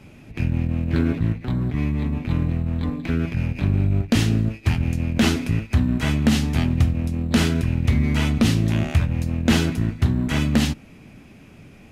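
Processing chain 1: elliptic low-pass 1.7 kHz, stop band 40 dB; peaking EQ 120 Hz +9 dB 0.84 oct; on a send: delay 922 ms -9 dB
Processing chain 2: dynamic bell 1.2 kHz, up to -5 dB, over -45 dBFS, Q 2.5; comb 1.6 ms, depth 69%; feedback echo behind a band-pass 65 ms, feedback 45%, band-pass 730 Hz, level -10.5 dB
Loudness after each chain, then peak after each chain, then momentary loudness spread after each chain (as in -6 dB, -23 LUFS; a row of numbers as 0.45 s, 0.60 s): -18.5 LUFS, -20.0 LUFS; -2.0 dBFS, -4.5 dBFS; 7 LU, 5 LU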